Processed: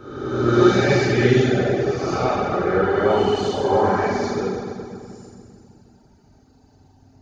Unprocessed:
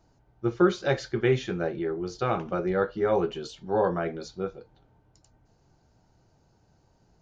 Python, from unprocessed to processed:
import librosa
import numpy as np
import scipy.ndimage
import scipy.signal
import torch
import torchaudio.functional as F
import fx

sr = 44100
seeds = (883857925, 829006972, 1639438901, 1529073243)

p1 = fx.spec_swells(x, sr, rise_s=1.45)
p2 = p1 + fx.echo_single(p1, sr, ms=95, db=-9.0, dry=0)
p3 = fx.rev_fdn(p2, sr, rt60_s=2.3, lf_ratio=1.5, hf_ratio=0.9, size_ms=23.0, drr_db=-8.5)
p4 = fx.dereverb_blind(p3, sr, rt60_s=0.57)
y = p4 * librosa.db_to_amplitude(-3.0)